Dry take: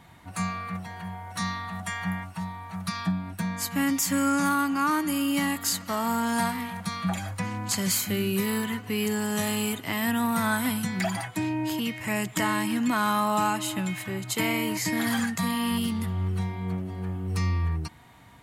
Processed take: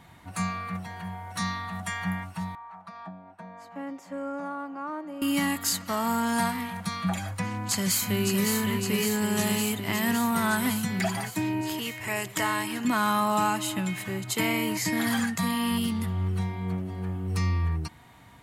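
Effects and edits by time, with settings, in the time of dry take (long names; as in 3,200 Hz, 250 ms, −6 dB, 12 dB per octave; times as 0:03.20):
0:02.55–0:05.22: envelope filter 590–1,300 Hz, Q 2.3, down, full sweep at −26 dBFS
0:07.45–0:08.49: delay throw 560 ms, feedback 75%, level −5 dB
0:11.61–0:12.85: parametric band 200 Hz −11.5 dB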